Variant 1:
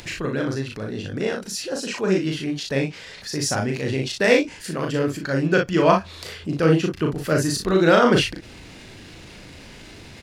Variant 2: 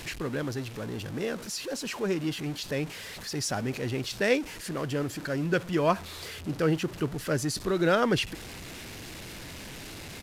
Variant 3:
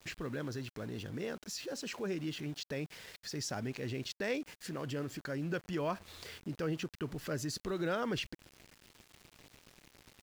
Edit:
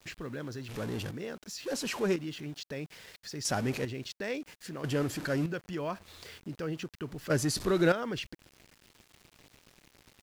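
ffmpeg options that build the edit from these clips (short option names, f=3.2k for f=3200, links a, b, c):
-filter_complex "[1:a]asplit=5[a][b][c][d][e];[2:a]asplit=6[f][g][h][i][j][k];[f]atrim=end=0.692[l];[a]atrim=start=0.688:end=1.112[m];[g]atrim=start=1.108:end=1.662[n];[b]atrim=start=1.658:end=2.162[o];[h]atrim=start=2.158:end=3.452[p];[c]atrim=start=3.448:end=3.852[q];[i]atrim=start=3.848:end=4.842[r];[d]atrim=start=4.838:end=5.462[s];[j]atrim=start=5.458:end=7.302[t];[e]atrim=start=7.298:end=7.922[u];[k]atrim=start=7.918[v];[l][m]acrossfade=d=0.004:c1=hsin:c2=hsin[w];[w][n]acrossfade=d=0.004:c1=hsin:c2=hsin[x];[x][o]acrossfade=d=0.004:c1=hsin:c2=hsin[y];[y][p]acrossfade=d=0.004:c1=hsin:c2=hsin[z];[z][q]acrossfade=d=0.004:c1=hsin:c2=hsin[aa];[aa][r]acrossfade=d=0.004:c1=hsin:c2=hsin[ab];[ab][s]acrossfade=d=0.004:c1=hsin:c2=hsin[ac];[ac][t]acrossfade=d=0.004:c1=hsin:c2=hsin[ad];[ad][u]acrossfade=d=0.004:c1=hsin:c2=hsin[ae];[ae][v]acrossfade=d=0.004:c1=hsin:c2=hsin"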